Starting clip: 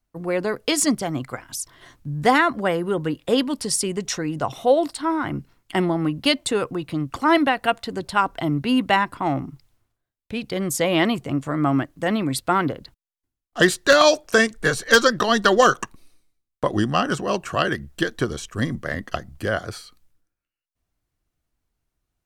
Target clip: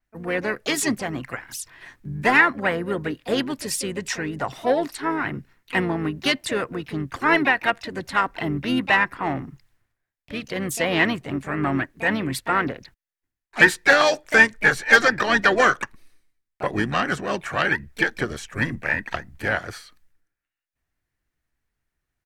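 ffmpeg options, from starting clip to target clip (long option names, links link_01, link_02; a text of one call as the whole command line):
ffmpeg -i in.wav -filter_complex "[0:a]asplit=2[link_01][link_02];[link_02]acontrast=73,volume=2.5dB[link_03];[link_01][link_03]amix=inputs=2:normalize=0,equalizer=frequency=1800:width=2.5:gain=12,asplit=4[link_04][link_05][link_06][link_07];[link_05]asetrate=22050,aresample=44100,atempo=2,volume=-16dB[link_08];[link_06]asetrate=37084,aresample=44100,atempo=1.18921,volume=-17dB[link_09];[link_07]asetrate=58866,aresample=44100,atempo=0.749154,volume=-10dB[link_10];[link_04][link_08][link_09][link_10]amix=inputs=4:normalize=0,adynamicequalizer=threshold=0.0631:dfrequency=6700:dqfactor=0.7:tfrequency=6700:tqfactor=0.7:attack=5:release=100:ratio=0.375:range=2.5:mode=cutabove:tftype=highshelf,volume=-15.5dB" out.wav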